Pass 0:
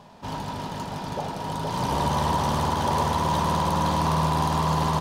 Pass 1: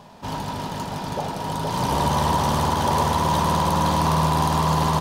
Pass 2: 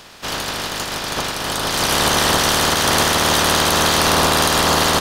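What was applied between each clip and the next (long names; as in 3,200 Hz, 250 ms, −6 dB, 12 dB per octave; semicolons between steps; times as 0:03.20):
high-shelf EQ 9,400 Hz +5.5 dB; level +3 dB
ceiling on every frequency bin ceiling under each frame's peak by 22 dB; level +4.5 dB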